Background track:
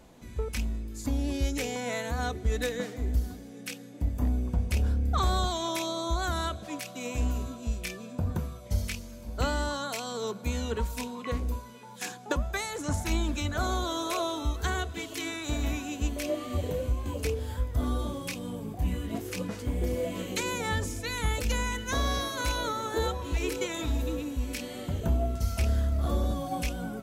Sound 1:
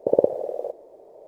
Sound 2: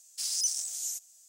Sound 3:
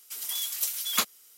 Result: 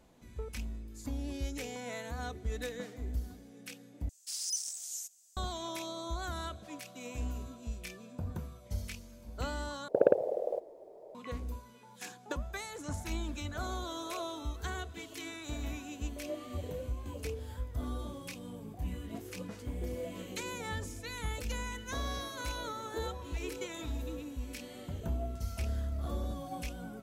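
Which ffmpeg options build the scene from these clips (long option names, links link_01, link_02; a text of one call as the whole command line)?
ffmpeg -i bed.wav -i cue0.wav -i cue1.wav -filter_complex "[0:a]volume=-8.5dB[link_01];[1:a]acontrast=33[link_02];[link_01]asplit=3[link_03][link_04][link_05];[link_03]atrim=end=4.094[link_06];[2:a]atrim=end=1.28,asetpts=PTS-STARTPTS,volume=-6dB[link_07];[link_04]atrim=start=5.366:end=9.884[link_08];[link_02]atrim=end=1.27,asetpts=PTS-STARTPTS,volume=-9.5dB[link_09];[link_05]atrim=start=11.146[link_10];[link_06][link_07]acrossfade=duration=0.004:curve1=hsin:curve2=hsin[link_11];[link_11][link_08]acrossfade=duration=0.004:curve1=hsin:curve2=hsin[link_12];[link_12][link_09]acrossfade=duration=0.004:curve1=hsin:curve2=hsin[link_13];[link_13][link_10]acrossfade=duration=0.004:curve1=hsin:curve2=hsin" out.wav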